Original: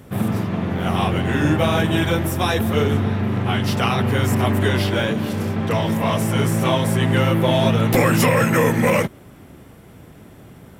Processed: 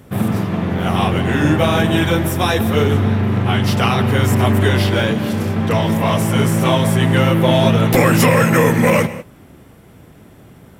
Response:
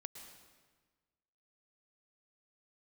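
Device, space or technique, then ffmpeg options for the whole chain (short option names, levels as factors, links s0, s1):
keyed gated reverb: -filter_complex "[0:a]asplit=3[s0][s1][s2];[1:a]atrim=start_sample=2205[s3];[s1][s3]afir=irnorm=-1:irlink=0[s4];[s2]apad=whole_len=475899[s5];[s4][s5]sidechaingate=range=0.0224:threshold=0.0141:ratio=16:detection=peak,volume=0.891[s6];[s0][s6]amix=inputs=2:normalize=0"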